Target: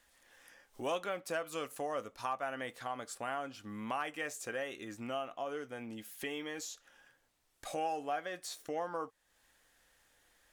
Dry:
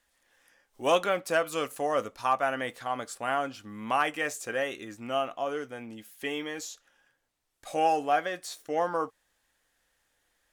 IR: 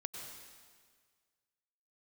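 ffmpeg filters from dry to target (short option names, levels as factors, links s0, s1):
-af "acompressor=threshold=0.00316:ratio=2,volume=1.58"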